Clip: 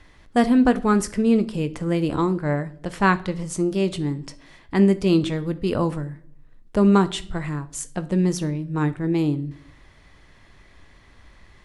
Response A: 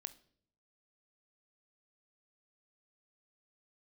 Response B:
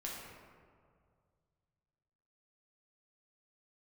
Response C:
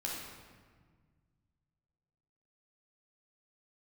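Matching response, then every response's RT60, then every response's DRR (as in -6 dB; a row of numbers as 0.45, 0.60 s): A; 0.60, 2.1, 1.6 s; 11.5, -4.5, -4.0 dB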